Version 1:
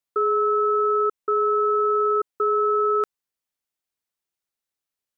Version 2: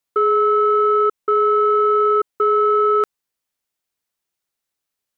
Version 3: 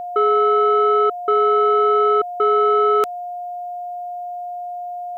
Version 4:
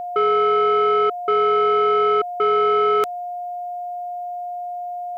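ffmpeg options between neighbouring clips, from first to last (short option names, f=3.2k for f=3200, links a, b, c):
-af "acontrast=81,volume=-1.5dB"
-af "aexciter=amount=1.7:drive=8.3:freq=2.4k,aeval=exprs='val(0)+0.0501*sin(2*PI*710*n/s)':c=same"
-af "asoftclip=type=tanh:threshold=-10.5dB"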